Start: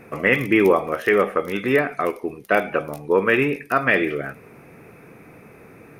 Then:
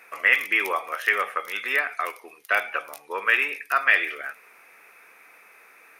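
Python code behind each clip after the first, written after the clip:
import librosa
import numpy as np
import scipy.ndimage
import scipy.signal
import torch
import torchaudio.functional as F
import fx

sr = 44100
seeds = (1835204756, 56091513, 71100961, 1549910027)

y = scipy.signal.sosfilt(scipy.signal.butter(2, 1300.0, 'highpass', fs=sr, output='sos'), x)
y = y * 10.0 ** (2.0 / 20.0)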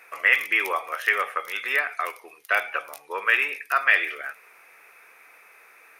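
y = fx.peak_eq(x, sr, hz=230.0, db=-7.5, octaves=0.81)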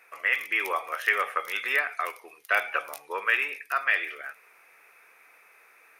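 y = fx.rider(x, sr, range_db=5, speed_s=0.5)
y = y * 10.0 ** (-3.0 / 20.0)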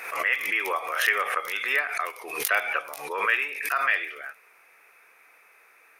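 y = fx.pre_swell(x, sr, db_per_s=64.0)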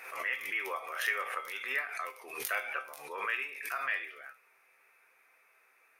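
y = fx.comb_fb(x, sr, f0_hz=130.0, decay_s=0.25, harmonics='all', damping=0.0, mix_pct=70)
y = y * 10.0 ** (-3.0 / 20.0)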